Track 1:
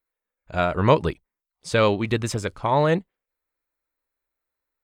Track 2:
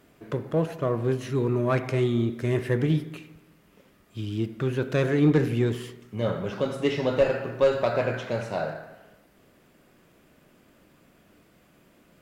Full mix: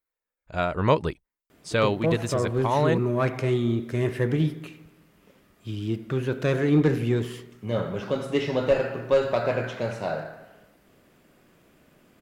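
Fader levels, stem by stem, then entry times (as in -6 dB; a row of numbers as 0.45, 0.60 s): -3.5, 0.0 dB; 0.00, 1.50 s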